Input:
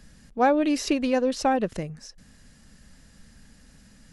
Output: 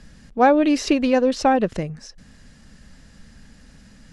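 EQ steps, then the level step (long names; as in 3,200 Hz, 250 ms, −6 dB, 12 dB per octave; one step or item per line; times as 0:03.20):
high-frequency loss of the air 50 metres
+5.5 dB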